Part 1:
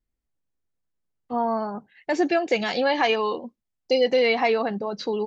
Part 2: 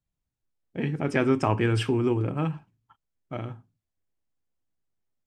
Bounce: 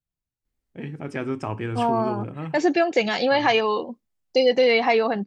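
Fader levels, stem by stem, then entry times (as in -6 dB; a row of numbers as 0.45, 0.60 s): +2.0, -5.5 dB; 0.45, 0.00 s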